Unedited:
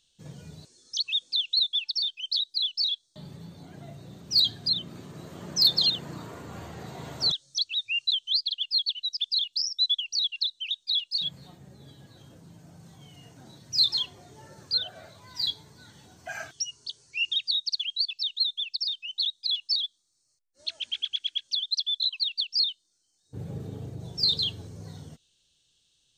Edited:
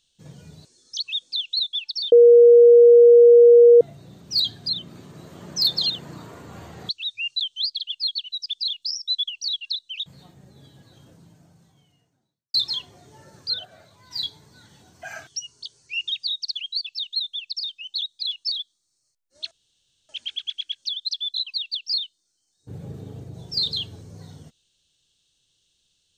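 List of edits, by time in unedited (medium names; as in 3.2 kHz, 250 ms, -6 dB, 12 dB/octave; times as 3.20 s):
2.12–3.81 s: bleep 475 Hz -7 dBFS
6.89–7.60 s: delete
10.77–11.30 s: delete
12.40–13.78 s: fade out quadratic
14.89–15.35 s: gain -3.5 dB
20.75 s: insert room tone 0.58 s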